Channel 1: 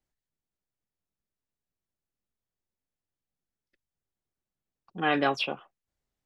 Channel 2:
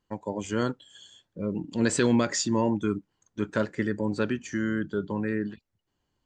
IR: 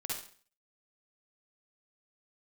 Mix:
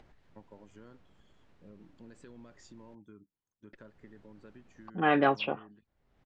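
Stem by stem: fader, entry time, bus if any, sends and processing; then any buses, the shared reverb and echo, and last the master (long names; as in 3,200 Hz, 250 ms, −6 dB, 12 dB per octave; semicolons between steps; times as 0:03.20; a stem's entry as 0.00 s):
+1.5 dB, 0.00 s, muted 0:02.95–0:03.73, no send, Bessel low-pass filter 1,900 Hz, order 2; upward compression, threshold −41 dBFS
−11.0 dB, 0.25 s, no send, high-shelf EQ 3,200 Hz −10.5 dB; downward compressor 4 to 1, threshold −30 dBFS, peak gain reduction 10 dB; automatic ducking −9 dB, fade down 0.65 s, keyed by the first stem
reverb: not used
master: no processing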